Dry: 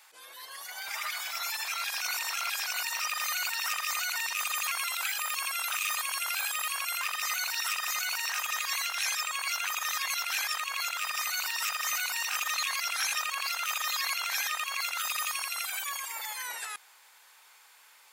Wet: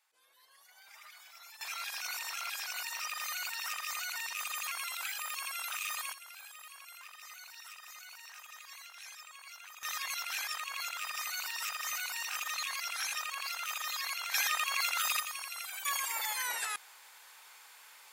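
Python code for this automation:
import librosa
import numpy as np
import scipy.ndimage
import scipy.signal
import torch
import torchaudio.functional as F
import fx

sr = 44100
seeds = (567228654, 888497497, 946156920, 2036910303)

y = fx.gain(x, sr, db=fx.steps((0.0, -19.0), (1.61, -6.5), (6.13, -18.5), (9.83, -6.0), (14.34, 0.5), (15.2, -7.5), (15.85, 2.0)))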